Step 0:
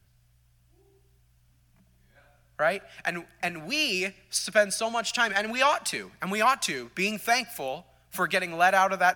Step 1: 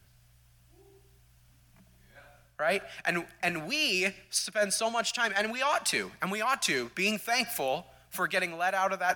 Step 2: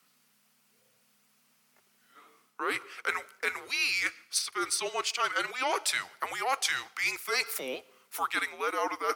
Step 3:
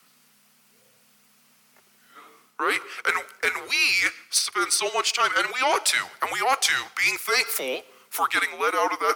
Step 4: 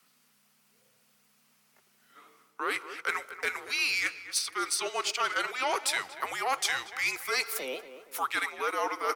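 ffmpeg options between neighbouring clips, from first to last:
-af "lowshelf=f=230:g=-4.5,areverse,acompressor=threshold=-30dB:ratio=12,areverse,volume=5.5dB"
-af "afreqshift=-270,highpass=540"
-filter_complex "[0:a]acrossover=split=310|4000[a][b][c];[a]alimiter=level_in=25dB:limit=-24dB:level=0:latency=1:release=323,volume=-25dB[d];[d][b][c]amix=inputs=3:normalize=0,asoftclip=type=tanh:threshold=-18.5dB,volume=8.5dB"
-filter_complex "[0:a]asplit=2[a][b];[b]adelay=234,lowpass=f=1.8k:p=1,volume=-11.5dB,asplit=2[c][d];[d]adelay=234,lowpass=f=1.8k:p=1,volume=0.44,asplit=2[e][f];[f]adelay=234,lowpass=f=1.8k:p=1,volume=0.44,asplit=2[g][h];[h]adelay=234,lowpass=f=1.8k:p=1,volume=0.44[i];[a][c][e][g][i]amix=inputs=5:normalize=0,volume=-7.5dB"

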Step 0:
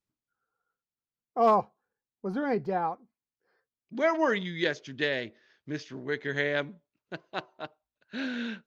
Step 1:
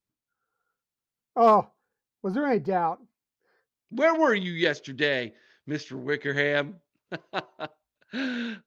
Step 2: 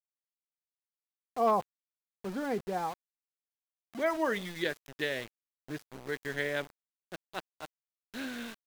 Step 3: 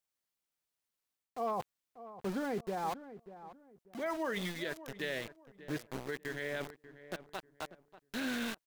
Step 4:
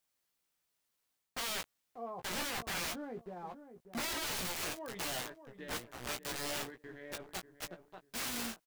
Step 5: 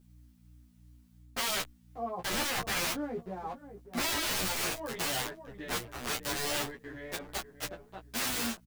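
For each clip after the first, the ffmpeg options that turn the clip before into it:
-af "dynaudnorm=f=190:g=5:m=4dB"
-af "aeval=exprs='val(0)*gte(abs(val(0)),0.0237)':c=same,volume=-8.5dB"
-filter_complex "[0:a]areverse,acompressor=threshold=-37dB:ratio=16,areverse,alimiter=level_in=10.5dB:limit=-24dB:level=0:latency=1:release=87,volume=-10.5dB,asplit=2[a][b];[b]adelay=590,lowpass=f=1.3k:p=1,volume=-13.5dB,asplit=2[c][d];[d]adelay=590,lowpass=f=1.3k:p=1,volume=0.29,asplit=2[e][f];[f]adelay=590,lowpass=f=1.3k:p=1,volume=0.29[g];[a][c][e][g]amix=inputs=4:normalize=0,volume=7dB"
-filter_complex "[0:a]alimiter=level_in=6.5dB:limit=-24dB:level=0:latency=1:release=57,volume=-6.5dB,aeval=exprs='(mod(84.1*val(0)+1,2)-1)/84.1':c=same,asplit=2[a][b];[b]adelay=17,volume=-6.5dB[c];[a][c]amix=inputs=2:normalize=0,volume=5dB"
-filter_complex "[0:a]aeval=exprs='val(0)+0.000794*(sin(2*PI*60*n/s)+sin(2*PI*2*60*n/s)/2+sin(2*PI*3*60*n/s)/3+sin(2*PI*4*60*n/s)/4+sin(2*PI*5*60*n/s)/5)':c=same,asplit=2[a][b];[b]adelay=9.2,afreqshift=2.8[c];[a][c]amix=inputs=2:normalize=1,volume=9dB"

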